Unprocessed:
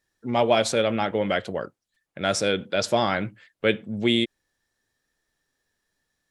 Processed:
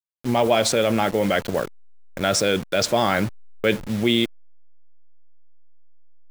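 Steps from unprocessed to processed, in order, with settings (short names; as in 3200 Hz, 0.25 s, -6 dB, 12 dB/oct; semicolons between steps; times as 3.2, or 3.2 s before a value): level-crossing sampler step -35.5 dBFS; in parallel at -3 dB: negative-ratio compressor -27 dBFS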